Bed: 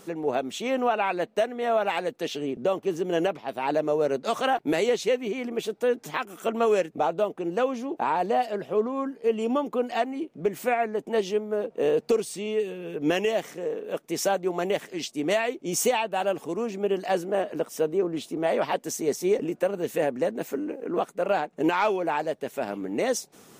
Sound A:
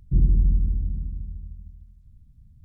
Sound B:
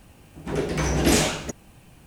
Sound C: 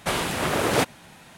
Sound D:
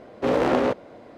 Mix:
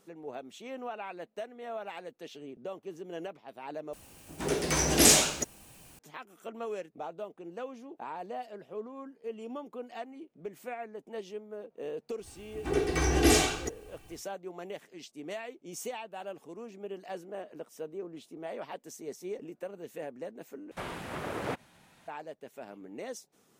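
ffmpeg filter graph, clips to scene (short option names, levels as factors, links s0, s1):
-filter_complex "[2:a]asplit=2[s0][s1];[0:a]volume=0.178[s2];[s0]bass=f=250:g=-6,treble=f=4000:g=9[s3];[s1]aecho=1:1:2.6:0.79[s4];[3:a]acrossover=split=2600[s5][s6];[s6]acompressor=threshold=0.0112:ratio=4:attack=1:release=60[s7];[s5][s7]amix=inputs=2:normalize=0[s8];[s2]asplit=3[s9][s10][s11];[s9]atrim=end=3.934[s12];[s3]atrim=end=2.06,asetpts=PTS-STARTPTS,volume=0.708[s13];[s10]atrim=start=5.986:end=20.714[s14];[s8]atrim=end=1.37,asetpts=PTS-STARTPTS,volume=0.237[s15];[s11]atrim=start=22.076[s16];[s4]atrim=end=2.06,asetpts=PTS-STARTPTS,volume=0.531,afade=t=in:d=0.1,afade=t=out:st=1.96:d=0.1,adelay=12180[s17];[s12][s13]acrossfade=d=0.004:c1=hsin:c2=hsin[s18];[s18][s14]acrossfade=d=0.004:c1=hsin:c2=hsin[s19];[s19][s15]acrossfade=d=0.004:c1=hsin:c2=hsin[s20];[s20][s16]acrossfade=d=0.004:c1=hsin:c2=hsin[s21];[s21][s17]amix=inputs=2:normalize=0"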